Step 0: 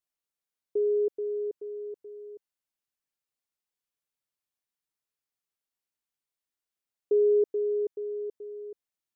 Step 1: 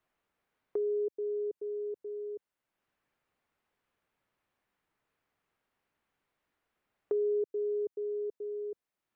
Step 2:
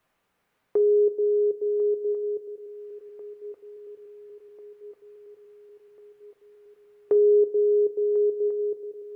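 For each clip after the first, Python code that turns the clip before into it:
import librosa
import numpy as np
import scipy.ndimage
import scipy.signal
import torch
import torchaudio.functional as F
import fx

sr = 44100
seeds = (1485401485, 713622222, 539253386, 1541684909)

y1 = fx.band_squash(x, sr, depth_pct=70)
y1 = F.gain(torch.from_numpy(y1), -4.5).numpy()
y2 = fx.echo_swing(y1, sr, ms=1394, ratio=3, feedback_pct=57, wet_db=-15)
y2 = fx.rev_double_slope(y2, sr, seeds[0], early_s=0.24, late_s=2.1, knee_db=-19, drr_db=8.0)
y2 = F.gain(torch.from_numpy(y2), 8.5).numpy()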